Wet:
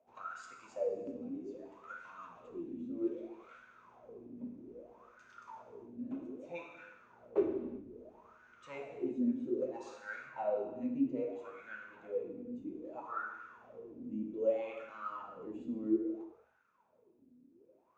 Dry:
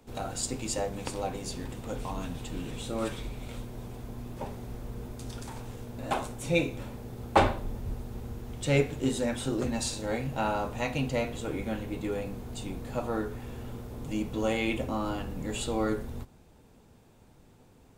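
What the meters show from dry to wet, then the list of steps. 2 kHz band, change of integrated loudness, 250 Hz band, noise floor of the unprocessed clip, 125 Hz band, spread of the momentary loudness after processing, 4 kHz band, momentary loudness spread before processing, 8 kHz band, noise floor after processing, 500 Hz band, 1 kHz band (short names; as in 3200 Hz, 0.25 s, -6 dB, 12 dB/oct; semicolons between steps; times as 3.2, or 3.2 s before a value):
-11.5 dB, -7.0 dB, -5.5 dB, -58 dBFS, -24.5 dB, 20 LU, under -25 dB, 13 LU, under -25 dB, -70 dBFS, -6.0 dB, -12.5 dB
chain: thirty-one-band EQ 800 Hz -10 dB, 2500 Hz +7 dB, 6300 Hz +11 dB, 10000 Hz -12 dB; wah 0.62 Hz 250–1500 Hz, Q 17; non-linear reverb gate 0.41 s falling, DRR 2.5 dB; gain +6.5 dB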